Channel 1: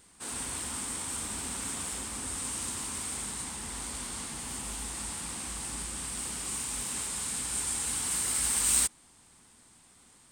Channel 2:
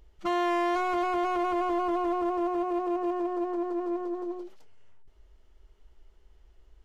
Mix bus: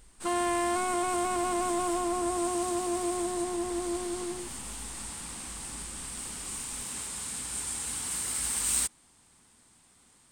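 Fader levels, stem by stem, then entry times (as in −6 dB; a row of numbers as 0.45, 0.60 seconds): −2.5, −2.0 decibels; 0.00, 0.00 seconds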